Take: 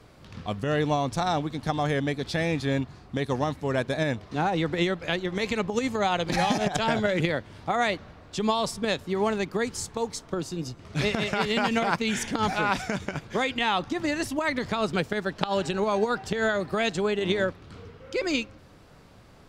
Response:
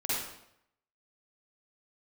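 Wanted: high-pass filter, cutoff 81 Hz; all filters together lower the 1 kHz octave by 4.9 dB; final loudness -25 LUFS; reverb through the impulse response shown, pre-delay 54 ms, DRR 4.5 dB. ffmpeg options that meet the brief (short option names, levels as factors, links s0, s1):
-filter_complex "[0:a]highpass=81,equalizer=f=1000:t=o:g=-7,asplit=2[s0][s1];[1:a]atrim=start_sample=2205,adelay=54[s2];[s1][s2]afir=irnorm=-1:irlink=0,volume=0.251[s3];[s0][s3]amix=inputs=2:normalize=0,volume=1.33"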